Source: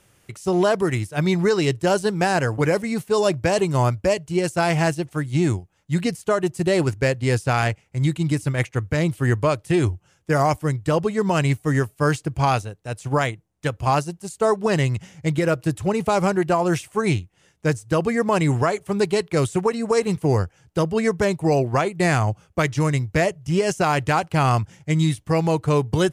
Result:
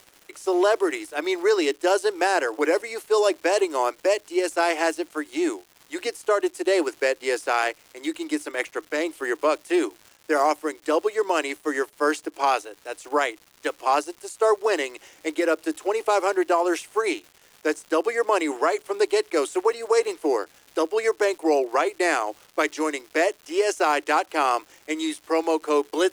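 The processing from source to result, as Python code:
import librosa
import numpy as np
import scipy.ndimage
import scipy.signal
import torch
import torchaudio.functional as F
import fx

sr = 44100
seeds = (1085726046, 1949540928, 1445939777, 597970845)

y = scipy.signal.sosfilt(scipy.signal.cheby1(6, 1.0, 300.0, 'highpass', fs=sr, output='sos'), x)
y = fx.dmg_crackle(y, sr, seeds[0], per_s=340.0, level_db=-38.0)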